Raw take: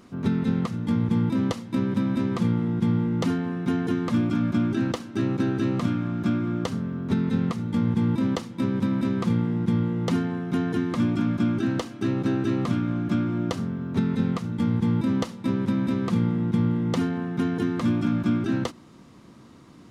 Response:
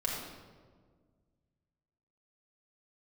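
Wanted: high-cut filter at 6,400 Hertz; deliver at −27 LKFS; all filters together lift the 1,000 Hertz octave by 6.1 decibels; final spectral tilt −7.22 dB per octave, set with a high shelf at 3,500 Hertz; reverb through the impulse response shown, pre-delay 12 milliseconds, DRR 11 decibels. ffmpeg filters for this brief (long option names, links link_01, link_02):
-filter_complex "[0:a]lowpass=6400,equalizer=frequency=1000:width_type=o:gain=8.5,highshelf=frequency=3500:gain=-7.5,asplit=2[link_01][link_02];[1:a]atrim=start_sample=2205,adelay=12[link_03];[link_02][link_03]afir=irnorm=-1:irlink=0,volume=-16.5dB[link_04];[link_01][link_04]amix=inputs=2:normalize=0,volume=-3dB"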